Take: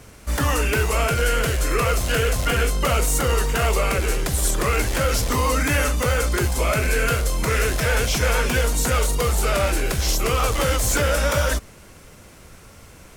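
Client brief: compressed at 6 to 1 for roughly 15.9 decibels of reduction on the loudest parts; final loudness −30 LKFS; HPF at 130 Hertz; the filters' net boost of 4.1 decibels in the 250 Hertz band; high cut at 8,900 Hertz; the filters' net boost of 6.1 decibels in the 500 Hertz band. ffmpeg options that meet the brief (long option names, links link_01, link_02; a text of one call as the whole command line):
ffmpeg -i in.wav -af "highpass=130,lowpass=8900,equalizer=frequency=250:width_type=o:gain=4,equalizer=frequency=500:width_type=o:gain=6,acompressor=threshold=-32dB:ratio=6,volume=4dB" out.wav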